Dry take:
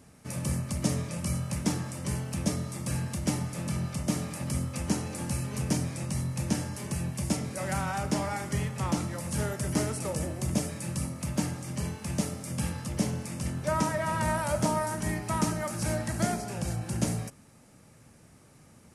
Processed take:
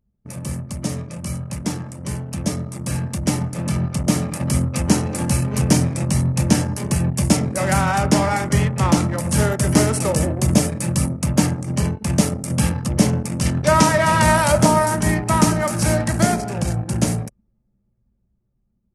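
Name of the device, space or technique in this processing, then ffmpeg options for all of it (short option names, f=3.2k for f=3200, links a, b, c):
voice memo with heavy noise removal: -filter_complex "[0:a]asettb=1/sr,asplit=3[a][b][c];[a]atrim=end=13.414[d];[b]atrim=start=13.41:end=14.52,asetpts=PTS-STARTPTS,afade=t=in:d=0.004:c=qsin,afade=t=out:st=1.106:d=0.004:c=qsin,equalizer=f=4k:w=0.62:g=5[e];[c]atrim=start=14.516[f];[d][e]acrossfade=d=0.004:c1=hsin:c2=qsin[g];[g][f]acrossfade=d=0.004:c1=qsin:c2=hsin,anlmdn=1,dynaudnorm=f=980:g=7:m=10.5dB,volume=3dB"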